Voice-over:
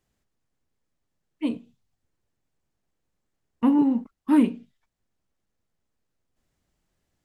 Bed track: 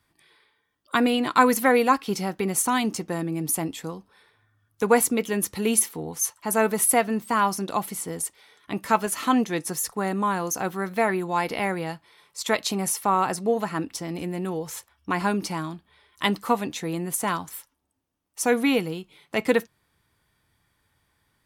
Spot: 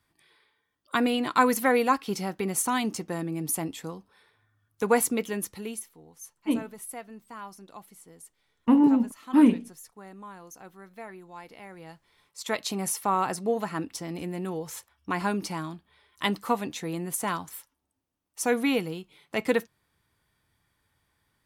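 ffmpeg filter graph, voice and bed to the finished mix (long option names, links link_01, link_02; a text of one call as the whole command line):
ffmpeg -i stem1.wav -i stem2.wav -filter_complex "[0:a]adelay=5050,volume=0.5dB[link_01];[1:a]volume=12.5dB,afade=type=out:start_time=5.18:duration=0.65:silence=0.158489,afade=type=in:start_time=11.69:duration=1.17:silence=0.158489[link_02];[link_01][link_02]amix=inputs=2:normalize=0" out.wav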